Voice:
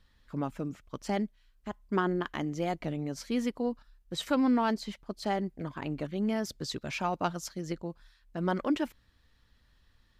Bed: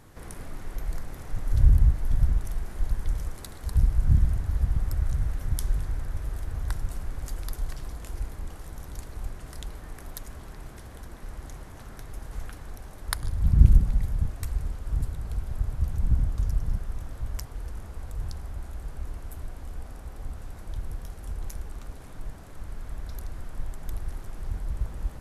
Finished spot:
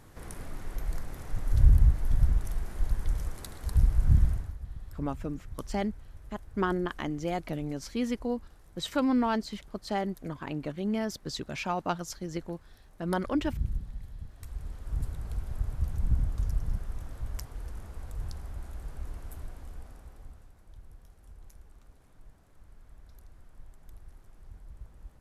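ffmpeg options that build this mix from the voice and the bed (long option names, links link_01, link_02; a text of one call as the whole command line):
ffmpeg -i stem1.wav -i stem2.wav -filter_complex "[0:a]adelay=4650,volume=0dB[link_01];[1:a]volume=11dB,afade=type=out:start_time=4.25:duration=0.31:silence=0.188365,afade=type=in:start_time=14.29:duration=0.81:silence=0.237137,afade=type=out:start_time=19.35:duration=1.18:silence=0.223872[link_02];[link_01][link_02]amix=inputs=2:normalize=0" out.wav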